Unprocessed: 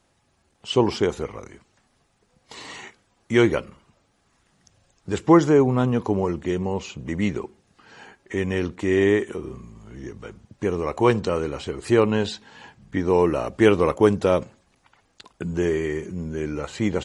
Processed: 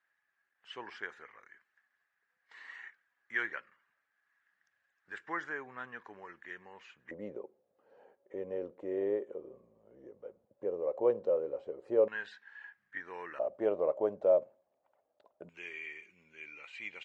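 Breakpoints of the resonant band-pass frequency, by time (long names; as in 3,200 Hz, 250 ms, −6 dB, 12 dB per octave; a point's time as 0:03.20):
resonant band-pass, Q 7.6
1,700 Hz
from 0:07.11 540 Hz
from 0:12.08 1,700 Hz
from 0:13.39 600 Hz
from 0:15.49 2,400 Hz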